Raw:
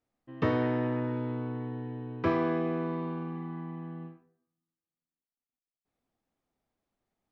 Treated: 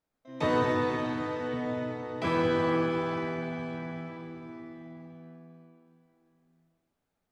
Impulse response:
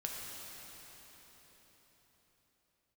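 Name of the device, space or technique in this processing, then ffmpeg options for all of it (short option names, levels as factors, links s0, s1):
shimmer-style reverb: -filter_complex "[0:a]asettb=1/sr,asplit=3[s0][s1][s2];[s0]atrim=end=0.634[s3];[s1]atrim=start=0.63:end=1.54,asetpts=PTS-STARTPTS,afade=t=in:d=0.004:c=qsin,afade=t=out:st=0.906:d=0.004:c=qsin,highpass=290[s4];[s2]atrim=start=1.536[s5];[s3][s4]acrossfade=d=0.004:c1=hsin:c2=qsin[s6];[s6][s5]acrossfade=d=0.004:c1=qsin:c2=hsin,asplit=2[s7][s8];[s8]asetrate=88200,aresample=44100,atempo=0.5,volume=0.631[s9];[s7][s9]amix=inputs=2:normalize=0[s10];[1:a]atrim=start_sample=2205[s11];[s10][s11]afir=irnorm=-1:irlink=0"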